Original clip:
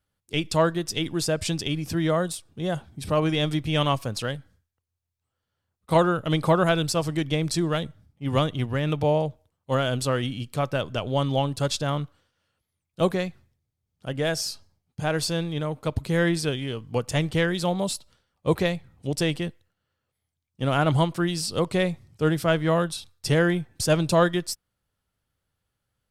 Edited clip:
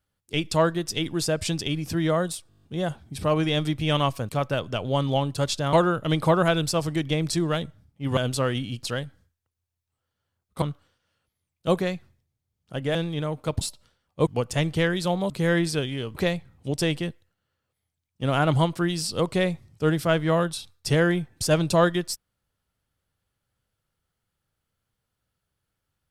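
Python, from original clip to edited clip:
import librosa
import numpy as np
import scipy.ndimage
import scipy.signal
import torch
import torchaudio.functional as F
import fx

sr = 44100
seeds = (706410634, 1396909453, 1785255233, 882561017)

y = fx.edit(x, sr, fx.stutter(start_s=2.49, slice_s=0.02, count=8),
    fx.swap(start_s=4.15, length_s=1.79, other_s=10.51, other_length_s=1.44),
    fx.cut(start_s=8.38, length_s=1.47),
    fx.cut(start_s=14.28, length_s=1.06),
    fx.swap(start_s=16.0, length_s=0.85, other_s=17.88, other_length_s=0.66), tone=tone)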